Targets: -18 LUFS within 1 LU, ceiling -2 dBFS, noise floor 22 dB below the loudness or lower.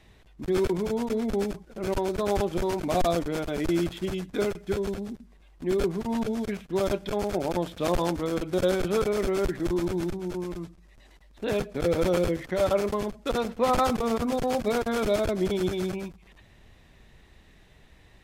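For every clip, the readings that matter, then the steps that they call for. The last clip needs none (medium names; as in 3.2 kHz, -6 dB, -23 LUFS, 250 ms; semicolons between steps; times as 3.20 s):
loudness -28.0 LUFS; peak level -13.0 dBFS; loudness target -18.0 LUFS
-> trim +10 dB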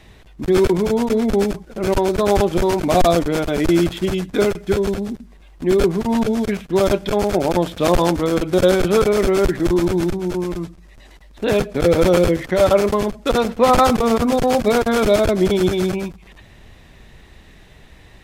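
loudness -18.0 LUFS; peak level -3.0 dBFS; noise floor -46 dBFS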